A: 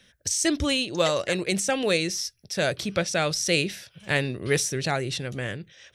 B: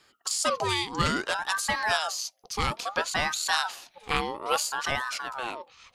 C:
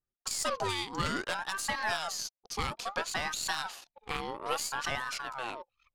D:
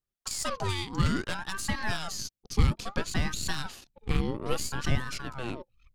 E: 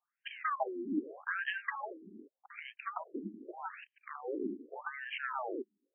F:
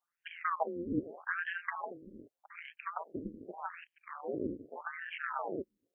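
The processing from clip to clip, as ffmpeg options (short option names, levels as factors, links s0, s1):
-af "aeval=exprs='val(0)*sin(2*PI*1000*n/s+1000*0.4/0.6*sin(2*PI*0.6*n/s))':c=same"
-af "aeval=exprs='0.376*(cos(1*acos(clip(val(0)/0.376,-1,1)))-cos(1*PI/2))+0.0188*(cos(8*acos(clip(val(0)/0.376,-1,1)))-cos(8*PI/2))':c=same,anlmdn=0.0251,alimiter=limit=0.168:level=0:latency=1:release=159,volume=0.631"
-af "asubboost=boost=12:cutoff=250"
-af "acompressor=threshold=0.0141:ratio=6,afftfilt=real='re*between(b*sr/1024,280*pow(2300/280,0.5+0.5*sin(2*PI*0.83*pts/sr))/1.41,280*pow(2300/280,0.5+0.5*sin(2*PI*0.83*pts/sr))*1.41)':imag='im*between(b*sr/1024,280*pow(2300/280,0.5+0.5*sin(2*PI*0.83*pts/sr))/1.41,280*pow(2300/280,0.5+0.5*sin(2*PI*0.83*pts/sr))*1.41)':win_size=1024:overlap=0.75,volume=3.98"
-filter_complex "[0:a]acrossover=split=2600[s0][s1];[s1]acompressor=threshold=0.00158:ratio=4:attack=1:release=60[s2];[s0][s2]amix=inputs=2:normalize=0,tremolo=f=170:d=0.667,volume=1.5"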